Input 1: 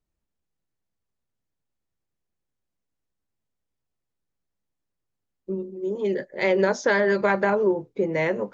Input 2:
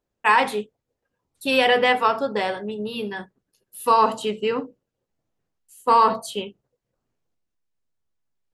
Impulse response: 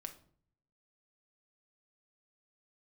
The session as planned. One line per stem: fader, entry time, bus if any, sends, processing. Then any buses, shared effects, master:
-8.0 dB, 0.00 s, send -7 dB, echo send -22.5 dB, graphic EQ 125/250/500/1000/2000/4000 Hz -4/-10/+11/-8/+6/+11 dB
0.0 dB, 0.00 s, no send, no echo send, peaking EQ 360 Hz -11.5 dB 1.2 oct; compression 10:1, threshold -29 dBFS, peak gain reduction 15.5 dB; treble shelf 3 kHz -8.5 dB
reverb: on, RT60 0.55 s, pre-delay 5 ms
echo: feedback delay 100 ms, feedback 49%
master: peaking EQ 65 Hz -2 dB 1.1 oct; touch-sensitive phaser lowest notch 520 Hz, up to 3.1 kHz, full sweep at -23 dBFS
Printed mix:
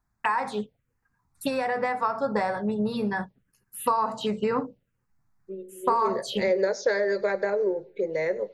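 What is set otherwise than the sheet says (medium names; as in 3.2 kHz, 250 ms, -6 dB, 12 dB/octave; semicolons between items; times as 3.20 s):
stem 1: send -7 dB -> -13 dB; stem 2 0.0 dB -> +10.0 dB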